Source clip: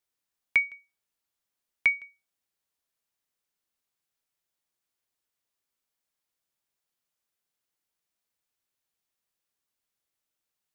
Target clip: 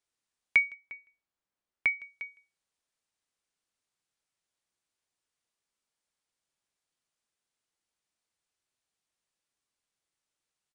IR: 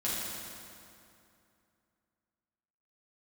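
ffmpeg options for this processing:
-filter_complex "[0:a]aecho=1:1:353:0.133,aresample=22050,aresample=44100,asettb=1/sr,asplit=3[s0][s1][s2];[s0]atrim=end=0.744[s3];[s1]atrim=start=0.74:end=2,asetpts=PTS-STARTPTS,afade=t=in:d=0.004:c=qsin,afade=t=out:st=1.256:d=0.004:c=qsin,highshelf=f=3000:g=-11.5[s4];[s2]atrim=start=1.996[s5];[s3][s4]acrossfade=d=0.004:c1=hsin:c2=qsin[s6];[s6][s5]acrossfade=d=0.004:c1=qsin:c2=hsin"

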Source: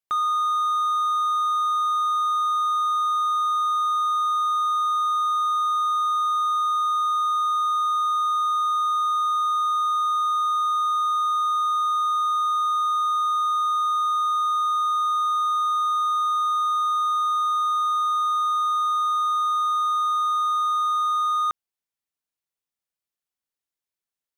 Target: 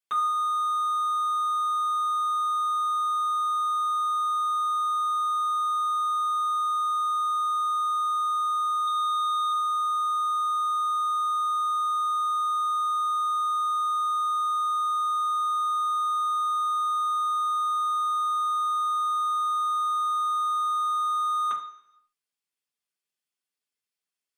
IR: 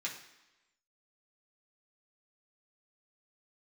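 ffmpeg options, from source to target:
-filter_complex "[0:a]asettb=1/sr,asplit=3[s0][s1][s2];[s0]atrim=end=8.874[s3];[s1]atrim=start=8.87:end=9.52,asetpts=PTS-STARTPTS,afade=t=in:d=0.004:c=qsin,afade=t=out:st=0.646:d=0.004:c=qsin,equalizer=f=3500:t=o:w=0.3:g=9[s4];[s2]atrim=start=9.516[s5];[s3][s4]acrossfade=d=0.004:c1=hsin:c2=qsin[s6];[s6][s5]acrossfade=d=0.004:c1=qsin:c2=hsin[s7];[1:a]atrim=start_sample=2205,asetrate=57330,aresample=44100[s8];[s7][s8]afir=irnorm=-1:irlink=0,volume=1.33"

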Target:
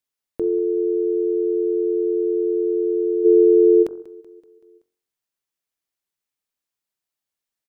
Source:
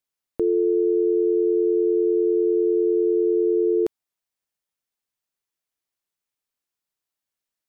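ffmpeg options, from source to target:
-filter_complex "[0:a]bandreject=f=45.17:t=h:w=4,bandreject=f=90.34:t=h:w=4,bandreject=f=135.51:t=h:w=4,bandreject=f=180.68:t=h:w=4,bandreject=f=225.85:t=h:w=4,bandreject=f=271.02:t=h:w=4,bandreject=f=316.19:t=h:w=4,bandreject=f=361.36:t=h:w=4,bandreject=f=406.53:t=h:w=4,bandreject=f=451.7:t=h:w=4,bandreject=f=496.87:t=h:w=4,bandreject=f=542.04:t=h:w=4,bandreject=f=587.21:t=h:w=4,bandreject=f=632.38:t=h:w=4,bandreject=f=677.55:t=h:w=4,bandreject=f=722.72:t=h:w=4,bandreject=f=767.89:t=h:w=4,bandreject=f=813.06:t=h:w=4,bandreject=f=858.23:t=h:w=4,bandreject=f=903.4:t=h:w=4,bandreject=f=948.57:t=h:w=4,bandreject=f=993.74:t=h:w=4,bandreject=f=1038.91:t=h:w=4,bandreject=f=1084.08:t=h:w=4,bandreject=f=1129.25:t=h:w=4,bandreject=f=1174.42:t=h:w=4,bandreject=f=1219.59:t=h:w=4,bandreject=f=1264.76:t=h:w=4,bandreject=f=1309.93:t=h:w=4,bandreject=f=1355.1:t=h:w=4,bandreject=f=1400.27:t=h:w=4,bandreject=f=1445.44:t=h:w=4,bandreject=f=1490.61:t=h:w=4,bandreject=f=1535.78:t=h:w=4,bandreject=f=1580.95:t=h:w=4,asplit=3[s0][s1][s2];[s0]afade=t=out:st=3.24:d=0.02[s3];[s1]equalizer=f=460:t=o:w=2.2:g=8.5,afade=t=in:st=3.24:d=0.02,afade=t=out:st=3.82:d=0.02[s4];[s2]afade=t=in:st=3.82:d=0.02[s5];[s3][s4][s5]amix=inputs=3:normalize=0,aecho=1:1:190|380|570|760|950:0.112|0.064|0.0365|0.0208|0.0118"

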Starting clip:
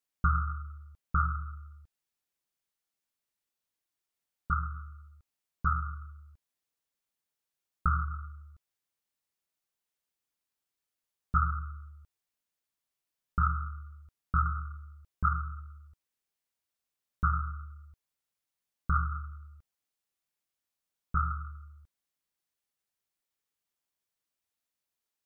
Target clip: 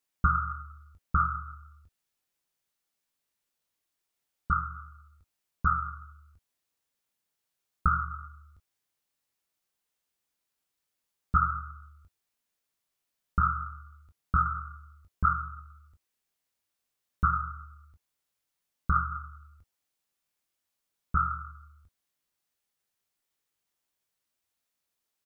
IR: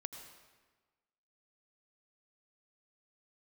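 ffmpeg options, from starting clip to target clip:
-af "aecho=1:1:21|33:0.376|0.2,volume=1.5"

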